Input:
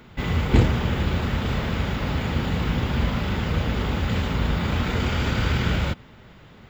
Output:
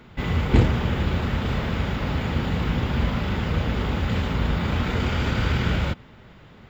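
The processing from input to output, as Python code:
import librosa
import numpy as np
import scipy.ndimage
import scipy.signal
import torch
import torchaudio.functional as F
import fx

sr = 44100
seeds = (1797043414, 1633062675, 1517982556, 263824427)

y = fx.high_shelf(x, sr, hz=5900.0, db=-6.0)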